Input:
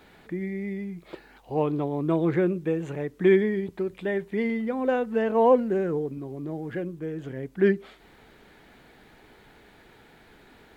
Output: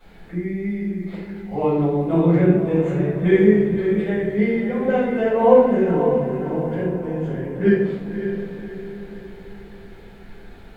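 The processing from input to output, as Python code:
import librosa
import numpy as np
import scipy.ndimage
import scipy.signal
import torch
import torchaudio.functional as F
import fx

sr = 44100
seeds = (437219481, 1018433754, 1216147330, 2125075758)

p1 = fx.low_shelf(x, sr, hz=120.0, db=10.0)
p2 = p1 + fx.echo_diffused(p1, sr, ms=568, feedback_pct=47, wet_db=-8, dry=0)
p3 = fx.room_shoebox(p2, sr, seeds[0], volume_m3=200.0, walls='mixed', distance_m=5.1)
y = F.gain(torch.from_numpy(p3), -10.5).numpy()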